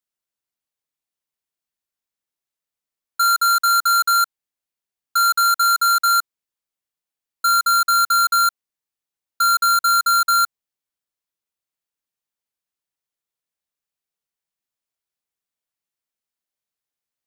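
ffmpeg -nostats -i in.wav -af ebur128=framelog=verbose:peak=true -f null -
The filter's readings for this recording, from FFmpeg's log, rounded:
Integrated loudness:
  I:         -16.2 LUFS
  Threshold: -26.4 LUFS
Loudness range:
  LRA:         5.8 LU
  Threshold: -38.8 LUFS
  LRA low:   -22.7 LUFS
  LRA high:  -16.9 LUFS
True peak:
  Peak:      -13.3 dBFS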